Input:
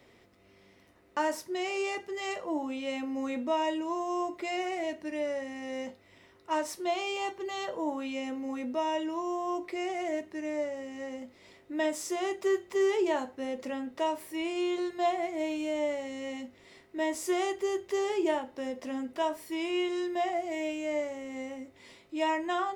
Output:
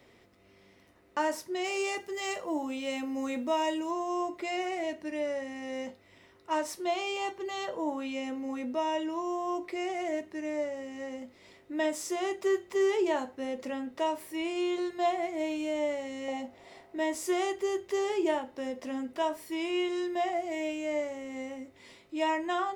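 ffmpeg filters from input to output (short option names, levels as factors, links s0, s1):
-filter_complex "[0:a]asettb=1/sr,asplit=3[s0][s1][s2];[s0]atrim=end=1.644[s3];[s1]atrim=start=1.64:end=3.91,asetpts=PTS-STARTPTS,afade=t=in:d=0.004:c=qsin,afade=t=out:st=2.266:d=0.004:c=qsin,highshelf=f=6800:g=10.5[s4];[s2]atrim=start=3.906[s5];[s3][s4]acrossfade=d=0.004:c1=hsin:c2=qsin[s6];[s6][s5]acrossfade=d=0.004:c1=qsin:c2=hsin,asettb=1/sr,asplit=3[s7][s8][s9];[s7]atrim=end=16.284[s10];[s8]atrim=start=16.28:end=16.96,asetpts=PTS-STARTPTS,afade=t=in:d=0.004:c=qsin,afade=t=out:st=0.676:d=0.004:c=qsin,equalizer=f=740:w=1.8:g=13.5[s11];[s9]atrim=start=16.956[s12];[s10][s11]acrossfade=d=0.004:c1=hsin:c2=qsin[s13];[s13][s12]acrossfade=d=0.004:c1=qsin:c2=hsin"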